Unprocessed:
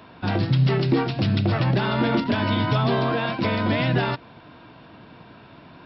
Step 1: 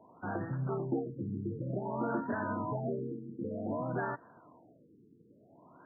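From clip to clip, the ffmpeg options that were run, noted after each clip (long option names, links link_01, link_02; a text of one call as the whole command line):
ffmpeg -i in.wav -af "highpass=frequency=330:poles=1,afftfilt=real='re*lt(b*sr/1024,450*pow(1900/450,0.5+0.5*sin(2*PI*0.54*pts/sr)))':imag='im*lt(b*sr/1024,450*pow(1900/450,0.5+0.5*sin(2*PI*0.54*pts/sr)))':win_size=1024:overlap=0.75,volume=-8.5dB" out.wav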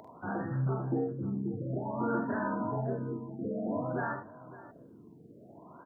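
ffmpeg -i in.wav -filter_complex "[0:a]acompressor=mode=upward:threshold=-47dB:ratio=2.5,asplit=2[link_01][link_02];[link_02]aecho=0:1:45|75|556:0.668|0.299|0.15[link_03];[link_01][link_03]amix=inputs=2:normalize=0" out.wav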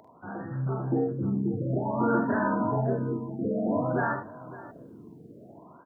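ffmpeg -i in.wav -af "dynaudnorm=framelen=320:gausssize=5:maxgain=10dB,volume=-3.5dB" out.wav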